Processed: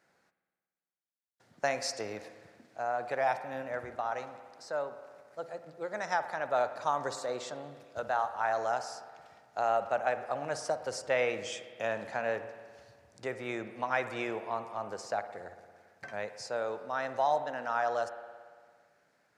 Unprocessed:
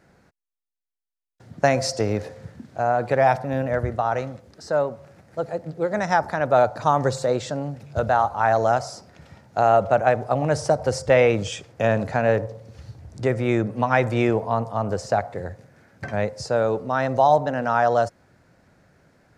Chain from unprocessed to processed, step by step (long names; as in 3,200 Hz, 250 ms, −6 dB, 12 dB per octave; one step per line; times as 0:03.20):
high-pass filter 830 Hz 6 dB per octave
on a send: convolution reverb RT60 1.8 s, pre-delay 56 ms, DRR 10.5 dB
on the sum: level −8 dB